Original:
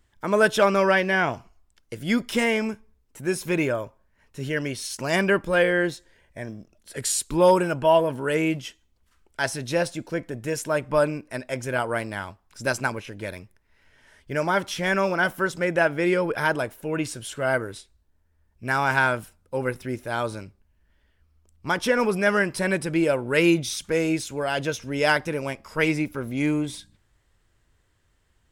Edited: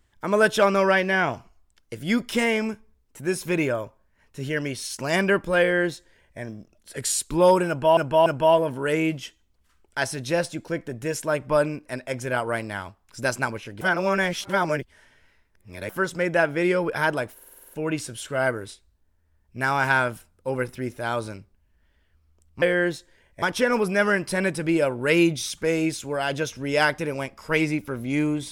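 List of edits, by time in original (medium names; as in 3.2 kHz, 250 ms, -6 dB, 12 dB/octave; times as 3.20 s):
5.60–6.40 s: copy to 21.69 s
7.68–7.97 s: loop, 3 plays
13.23–15.31 s: reverse
16.76 s: stutter 0.05 s, 8 plays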